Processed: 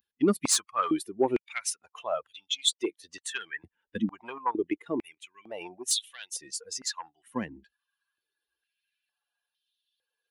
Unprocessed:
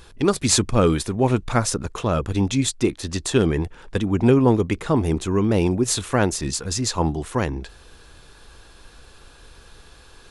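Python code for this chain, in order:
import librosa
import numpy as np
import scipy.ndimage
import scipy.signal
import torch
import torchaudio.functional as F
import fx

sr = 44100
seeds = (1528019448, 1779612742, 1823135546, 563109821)

y = fx.bin_expand(x, sr, power=2.0)
y = fx.high_shelf(y, sr, hz=9800.0, db=11.0)
y = fx.level_steps(y, sr, step_db=9, at=(4.25, 5.61))
y = 10.0 ** (-11.5 / 20.0) * np.tanh(y / 10.0 ** (-11.5 / 20.0))
y = fx.filter_held_highpass(y, sr, hz=2.2, low_hz=230.0, high_hz=3400.0)
y = F.gain(torch.from_numpy(y), -4.5).numpy()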